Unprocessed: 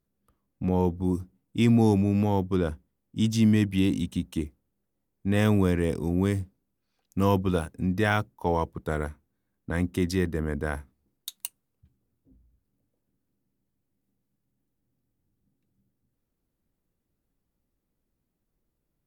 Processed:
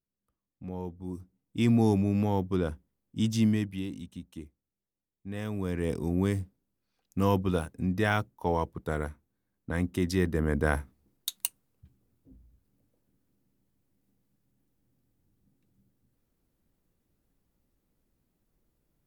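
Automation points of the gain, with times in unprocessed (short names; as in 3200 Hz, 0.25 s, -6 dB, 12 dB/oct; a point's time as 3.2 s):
1 s -13 dB
1.68 s -3 dB
3.42 s -3 dB
3.89 s -13 dB
5.51 s -13 dB
5.92 s -2.5 dB
10.02 s -2.5 dB
10.7 s +4 dB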